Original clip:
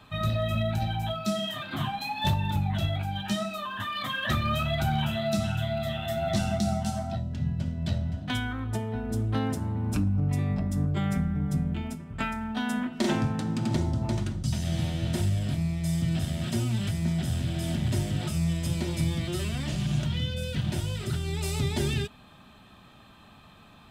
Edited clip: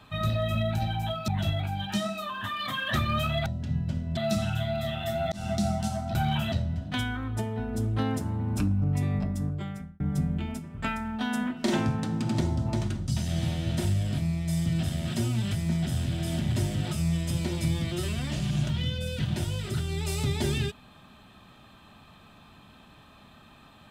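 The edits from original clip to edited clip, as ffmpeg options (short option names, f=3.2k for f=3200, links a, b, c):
-filter_complex "[0:a]asplit=8[a][b][c][d][e][f][g][h];[a]atrim=end=1.282[i];[b]atrim=start=2.638:end=4.822[j];[c]atrim=start=7.168:end=7.882[k];[d]atrim=start=5.188:end=6.34,asetpts=PTS-STARTPTS,afade=t=out:st=1.148:d=0.004:c=hsin[l];[e]atrim=start=6.34:end=7.172,asetpts=PTS-STARTPTS,afade=t=in:d=0.31:c=qsin[m];[f]atrim=start=4.818:end=5.192[n];[g]atrim=start=7.878:end=11.36,asetpts=PTS-STARTPTS,afade=t=out:st=2.682:d=0.8[o];[h]atrim=start=11.36,asetpts=PTS-STARTPTS,afade=t=in:d=0.004:c=hsin[p];[i][j]acrossfade=d=0.004:c1=hsin:c2=hsin[q];[q][k]acrossfade=d=0.004:c1=hsin:c2=hsin[r];[l][m]concat=n=2:v=0:a=1[s];[r][s]acrossfade=d=0.004:c1=hsin:c2=hsin[t];[t][n]acrossfade=d=0.004:c1=hsin:c2=hsin[u];[o][p]concat=n=2:v=0:a=1[v];[u][v]acrossfade=d=0.004:c1=hsin:c2=hsin"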